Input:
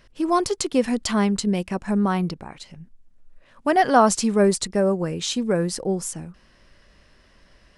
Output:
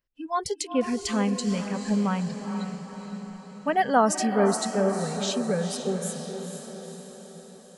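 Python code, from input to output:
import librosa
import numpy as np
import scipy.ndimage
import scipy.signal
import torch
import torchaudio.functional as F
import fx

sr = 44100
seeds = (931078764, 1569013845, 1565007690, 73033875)

p1 = fx.noise_reduce_blind(x, sr, reduce_db=26)
p2 = p1 + fx.echo_diffused(p1, sr, ms=475, feedback_pct=57, wet_db=-7.5, dry=0)
y = p2 * librosa.db_to_amplitude(-4.5)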